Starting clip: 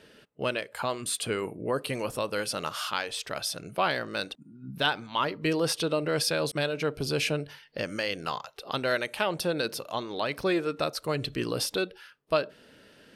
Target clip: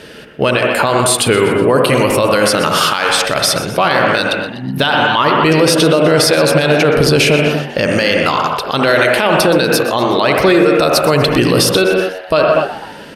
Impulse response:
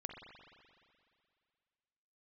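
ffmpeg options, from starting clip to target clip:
-filter_complex "[0:a]asettb=1/sr,asplit=3[a][b][c];[a]atrim=end=10.544[d];[b]atrim=start=10.54:end=11.6,asetpts=PTS-STARTPTS,afade=t=in:d=0.004:c=qsin,afade=t=out:st=1.056:d=0.004:c=qsin,highshelf=f=10k:g=5.5[e];[c]atrim=start=11.596[f];[d][e]acrossfade=d=0.004:c1=hsin:c2=qsin[g];[g][f]acrossfade=d=0.004:c1=qsin:c2=hsin,asplit=5[h][i][j][k][l];[i]adelay=123,afreqshift=89,volume=-16dB[m];[j]adelay=246,afreqshift=178,volume=-22.2dB[n];[k]adelay=369,afreqshift=267,volume=-28.4dB[o];[l]adelay=492,afreqshift=356,volume=-34.6dB[p];[h][m][n][o][p]amix=inputs=5:normalize=0[q];[1:a]atrim=start_sample=2205,afade=t=out:st=0.24:d=0.01,atrim=end_sample=11025,asetrate=32634,aresample=44100[r];[q][r]afir=irnorm=-1:irlink=0,alimiter=level_in=24dB:limit=-1dB:release=50:level=0:latency=1,volume=-1dB"

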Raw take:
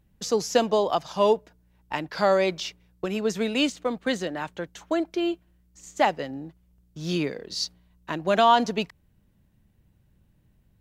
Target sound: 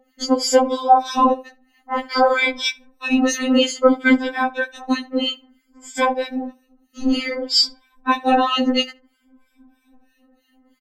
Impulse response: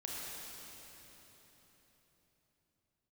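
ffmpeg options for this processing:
-filter_complex "[0:a]afftfilt=real='re*pow(10,19/40*sin(2*PI*(1.7*log(max(b,1)*sr/1024/100)/log(2)-(0.57)*(pts-256)/sr)))':imag='im*pow(10,19/40*sin(2*PI*(1.7*log(max(b,1)*sr/1024/100)/log(2)-(0.57)*(pts-256)/sr)))':win_size=1024:overlap=0.75,lowpass=f=3k:p=1,lowshelf=f=150:g=-10,acompressor=threshold=-22dB:ratio=12,acrossover=split=1300[a][b];[a]aeval=exprs='val(0)*(1-1/2+1/2*cos(2*PI*3.1*n/s))':c=same[c];[b]aeval=exprs='val(0)*(1-1/2-1/2*cos(2*PI*3.1*n/s))':c=same[d];[c][d]amix=inputs=2:normalize=0,afftfilt=real='hypot(re,im)*cos(2*PI*random(0))':imag='hypot(re,im)*sin(2*PI*random(1))':win_size=512:overlap=0.75,asplit=2[e][f];[f]adelay=76,lowpass=f=2.3k:p=1,volume=-22dB,asplit=2[g][h];[h]adelay=76,lowpass=f=2.3k:p=1,volume=0.25[i];[e][g][i]amix=inputs=3:normalize=0,alimiter=level_in=25.5dB:limit=-1dB:release=50:level=0:latency=1,afftfilt=real='re*3.46*eq(mod(b,12),0)':imag='im*3.46*eq(mod(b,12),0)':win_size=2048:overlap=0.75,volume=-1dB"

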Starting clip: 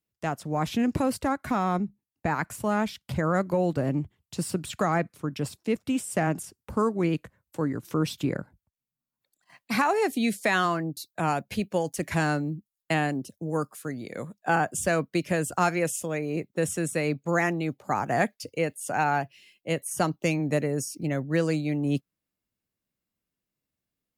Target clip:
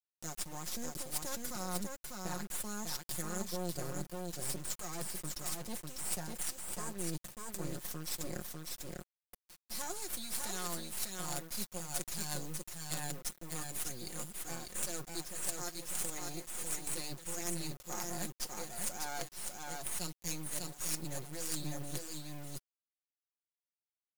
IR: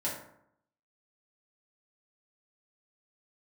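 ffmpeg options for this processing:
-filter_complex "[0:a]aexciter=amount=9.2:drive=8.8:freq=4.1k,areverse,acompressor=threshold=-27dB:ratio=10,areverse,highpass=59,asplit=2[a][b];[b]aecho=0:1:598:0.668[c];[a][c]amix=inputs=2:normalize=0,acrusher=bits=4:dc=4:mix=0:aa=0.000001,aecho=1:1:5.6:0.62,volume=-8.5dB"

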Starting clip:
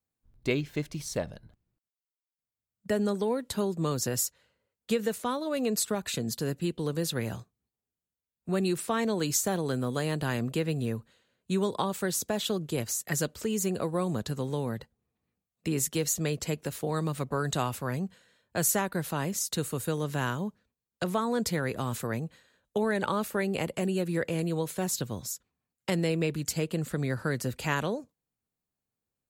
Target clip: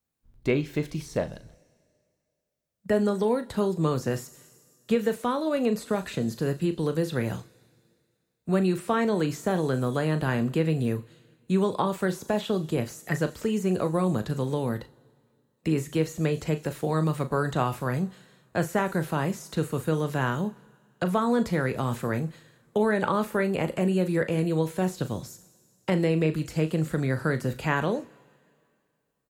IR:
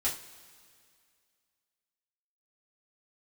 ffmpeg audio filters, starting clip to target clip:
-filter_complex "[0:a]asplit=2[a][b];[1:a]atrim=start_sample=2205[c];[b][c]afir=irnorm=-1:irlink=0,volume=-17dB[d];[a][d]amix=inputs=2:normalize=0,acrossover=split=2500[e][f];[f]acompressor=threshold=-47dB:ratio=4:attack=1:release=60[g];[e][g]amix=inputs=2:normalize=0,asplit=2[h][i];[i]adelay=38,volume=-12dB[j];[h][j]amix=inputs=2:normalize=0,volume=3dB"

